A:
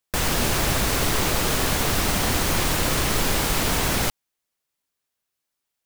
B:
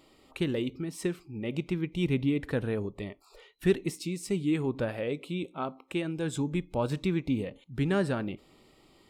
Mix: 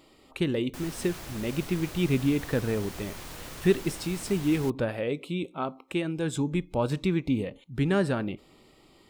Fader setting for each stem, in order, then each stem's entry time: -19.5 dB, +2.5 dB; 0.60 s, 0.00 s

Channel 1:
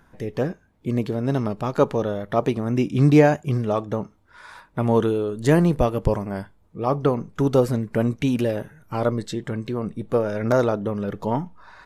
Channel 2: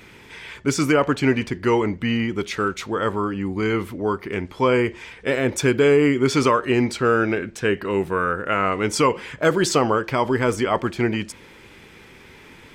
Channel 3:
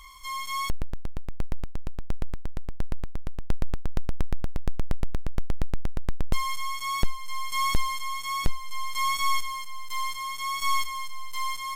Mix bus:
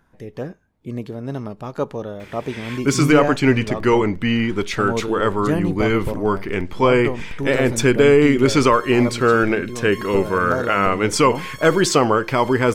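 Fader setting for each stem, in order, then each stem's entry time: -5.0 dB, +3.0 dB, -10.0 dB; 0.00 s, 2.20 s, 2.40 s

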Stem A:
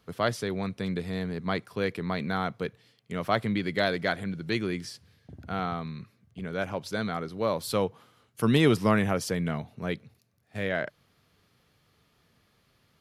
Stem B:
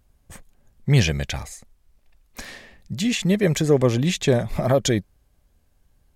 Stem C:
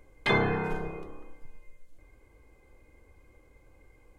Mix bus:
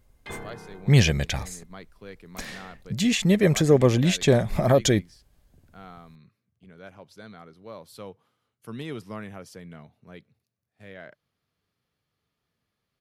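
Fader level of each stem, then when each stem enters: -14.0 dB, 0.0 dB, -14.0 dB; 0.25 s, 0.00 s, 0.00 s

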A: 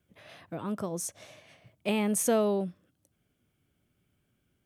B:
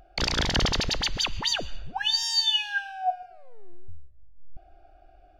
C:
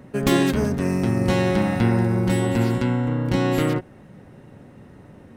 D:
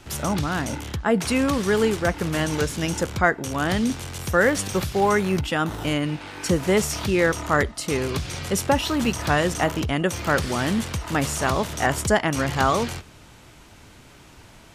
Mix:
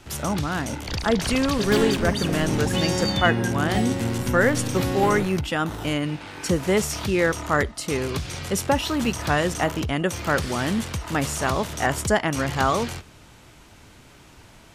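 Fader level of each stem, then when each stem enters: -14.0 dB, -6.0 dB, -5.5 dB, -1.0 dB; 0.00 s, 0.70 s, 1.45 s, 0.00 s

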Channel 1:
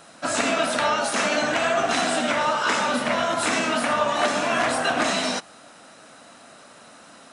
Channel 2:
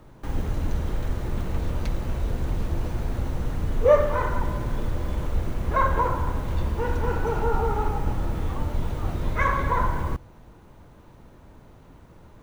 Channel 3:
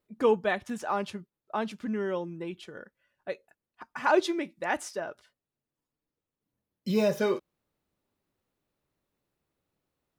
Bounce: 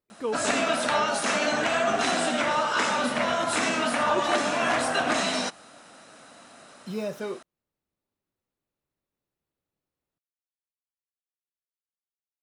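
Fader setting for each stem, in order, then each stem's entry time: -2.5 dB, mute, -6.5 dB; 0.10 s, mute, 0.00 s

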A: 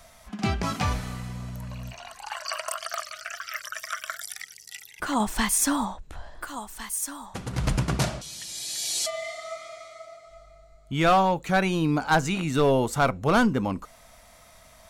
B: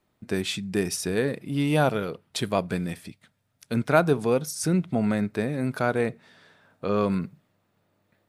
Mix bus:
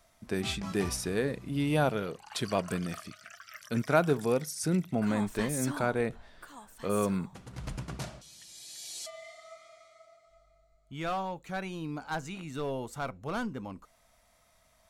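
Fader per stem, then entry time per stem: -13.5 dB, -5.0 dB; 0.00 s, 0.00 s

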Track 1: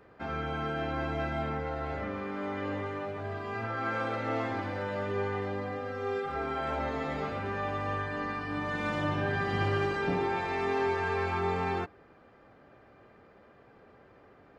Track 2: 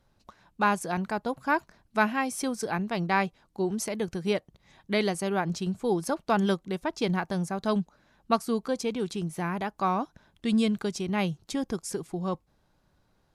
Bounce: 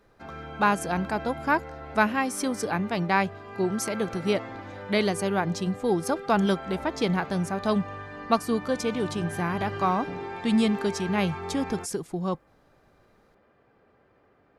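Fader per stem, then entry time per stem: -5.5 dB, +2.0 dB; 0.00 s, 0.00 s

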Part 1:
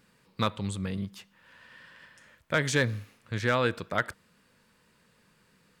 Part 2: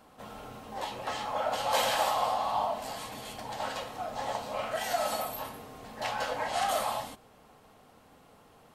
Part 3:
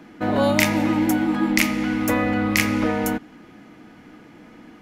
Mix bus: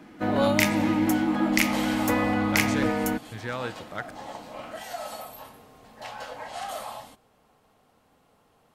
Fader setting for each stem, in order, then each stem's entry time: -7.0 dB, -5.5 dB, -3.5 dB; 0.00 s, 0.00 s, 0.00 s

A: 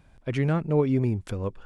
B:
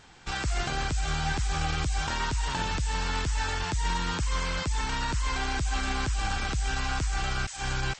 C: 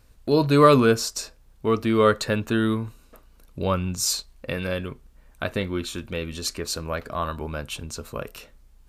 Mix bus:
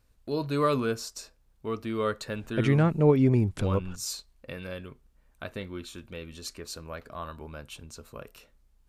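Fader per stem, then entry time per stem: +2.0 dB, mute, -10.5 dB; 2.30 s, mute, 0.00 s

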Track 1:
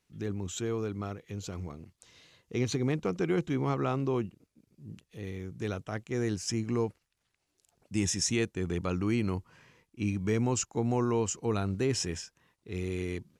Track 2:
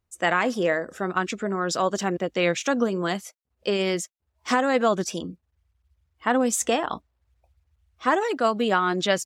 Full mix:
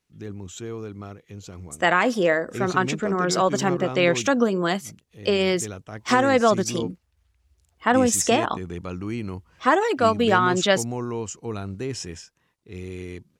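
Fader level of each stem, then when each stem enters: -1.0 dB, +3.0 dB; 0.00 s, 1.60 s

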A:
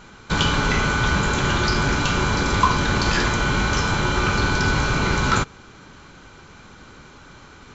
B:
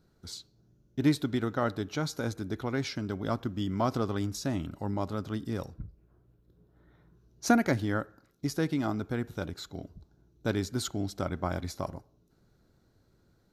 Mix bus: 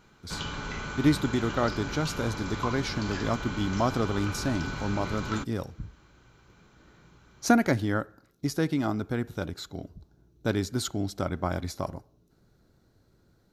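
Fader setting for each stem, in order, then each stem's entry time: -15.5 dB, +2.5 dB; 0.00 s, 0.00 s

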